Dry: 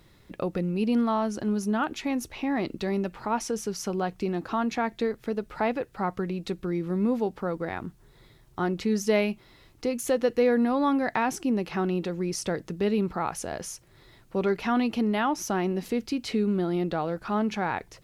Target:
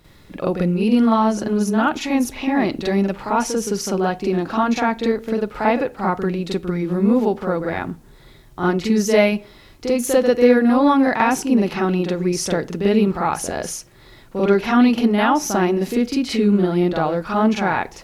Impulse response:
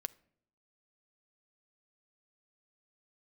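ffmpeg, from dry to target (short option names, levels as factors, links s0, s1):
-filter_complex "[0:a]asplit=2[s0][s1];[1:a]atrim=start_sample=2205,asetrate=66150,aresample=44100,adelay=45[s2];[s1][s2]afir=irnorm=-1:irlink=0,volume=3.76[s3];[s0][s3]amix=inputs=2:normalize=0,volume=1.26"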